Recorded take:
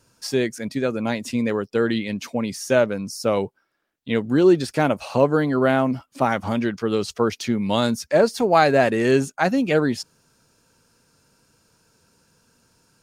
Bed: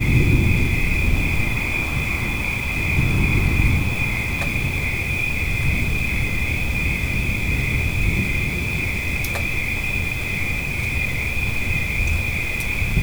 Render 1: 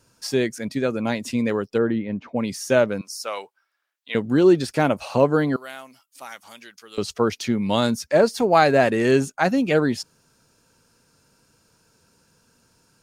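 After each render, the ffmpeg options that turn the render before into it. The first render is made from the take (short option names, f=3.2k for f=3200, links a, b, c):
-filter_complex "[0:a]asplit=3[a][b][c];[a]afade=t=out:st=1.77:d=0.02[d];[b]lowpass=1.3k,afade=t=in:st=1.77:d=0.02,afade=t=out:st=2.35:d=0.02[e];[c]afade=t=in:st=2.35:d=0.02[f];[d][e][f]amix=inputs=3:normalize=0,asettb=1/sr,asplit=3[g][h][i];[g]atrim=end=3.014[j];[h]atrim=start=3.01:end=4.15,asetpts=PTS-STARTPTS,afade=t=in:d=0.004:c=qsin,afade=t=out:st=1.136:d=0.004:c=qsin,highpass=980[k];[i]atrim=start=4.146[l];[j][k]acrossfade=d=0.004:c1=hsin:c2=qsin[m];[m][l]acrossfade=d=0.004:c1=qsin:c2=hsin,asettb=1/sr,asplit=3[n][o][p];[n]atrim=end=5.564[q];[o]atrim=start=5.56:end=6.98,asetpts=PTS-STARTPTS,afade=t=in:d=0.004:c=qsin,afade=t=out:st=1.416:d=0.004:c=qsin,aderivative[r];[p]atrim=start=6.976[s];[q][r]acrossfade=d=0.004:c1=hsin:c2=qsin[t];[t][s]acrossfade=d=0.004:c1=qsin:c2=hsin"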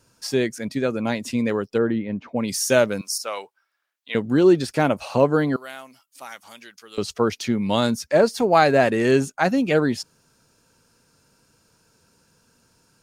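-filter_complex "[0:a]asettb=1/sr,asplit=3[a][b][c];[a]atrim=end=2.484[d];[b]atrim=start=2.48:end=3.18,asetpts=PTS-STARTPTS,afade=t=in:d=0.004:c=qsin,afade=t=out:st=0.696:d=0.004:c=qsin,highshelf=f=3.7k:g=11[e];[c]atrim=start=3.176[f];[d][e]acrossfade=d=0.004:c1=hsin:c2=qsin[g];[g][f]acrossfade=d=0.004:c1=qsin:c2=hsin"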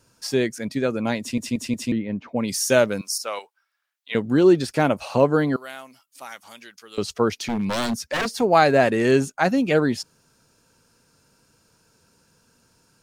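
-filter_complex "[0:a]asettb=1/sr,asplit=3[a][b][c];[a]atrim=end=3.394[d];[b]atrim=start=3.39:end=4.12,asetpts=PTS-STARTPTS,afade=t=in:d=0.004:c=qsin,afade=t=out:st=0.726:d=0.004:c=qsin,highpass=f=920:p=1[e];[c]atrim=start=4.116[f];[d][e]acrossfade=d=0.004:c1=hsin:c2=qsin[g];[g][f]acrossfade=d=0.004:c1=qsin:c2=hsin,asettb=1/sr,asplit=3[h][i][j];[h]atrim=end=7.424[k];[i]atrim=start=7.42:end=8.34,asetpts=PTS-STARTPTS,afade=t=in:d=0.004:c=qsin,afade=t=out:st=0.916:d=0.004:c=qsin,aeval=exprs='0.119*(abs(mod(val(0)/0.119+3,4)-2)-1)':c=same[l];[j]atrim=start=8.336[m];[k][l]acrossfade=d=0.004:c1=hsin:c2=qsin[n];[n][m]acrossfade=d=0.004:c1=qsin:c2=hsin,asplit=5[o][p][q][r][s];[o]atrim=end=1.382[t];[p]atrim=start=1.198:end=1.382[u];[q]atrim=start=1.198:end=1.382[v];[r]atrim=start=1.198:end=1.382[w];[s]atrim=start=1.918[x];[t][u]acrossfade=d=0.004:c1=hsin:c2=hsin[y];[y][v]acrossfade=d=0.004:c1=hsin:c2=hsin[z];[z][w]acrossfade=d=0.004:c1=hsin:c2=hsin[aa];[aa][x]acrossfade=d=0.004:c1=hsin:c2=hsin"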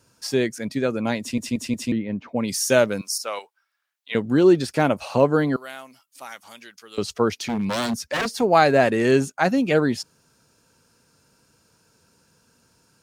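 -af "highpass=42"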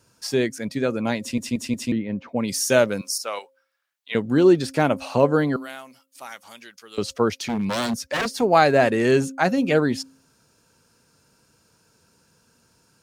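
-af "bandreject=f=266.9:t=h:w=4,bandreject=f=533.8:t=h:w=4"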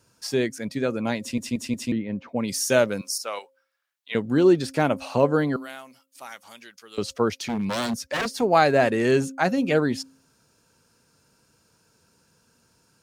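-af "volume=-2dB"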